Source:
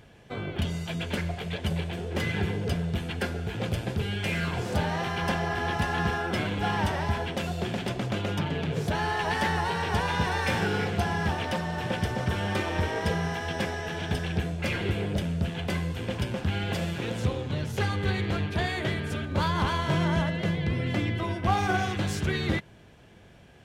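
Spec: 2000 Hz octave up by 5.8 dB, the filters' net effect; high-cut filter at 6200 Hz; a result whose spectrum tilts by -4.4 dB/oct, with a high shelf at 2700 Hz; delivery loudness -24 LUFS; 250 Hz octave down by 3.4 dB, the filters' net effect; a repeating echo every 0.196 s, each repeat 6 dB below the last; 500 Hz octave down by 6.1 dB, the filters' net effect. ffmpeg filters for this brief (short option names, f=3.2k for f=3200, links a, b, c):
-af "lowpass=6.2k,equalizer=f=250:t=o:g=-4,equalizer=f=500:t=o:g=-7.5,equalizer=f=2k:t=o:g=5,highshelf=f=2.7k:g=7,aecho=1:1:196|392|588|784|980|1176:0.501|0.251|0.125|0.0626|0.0313|0.0157,volume=2.5dB"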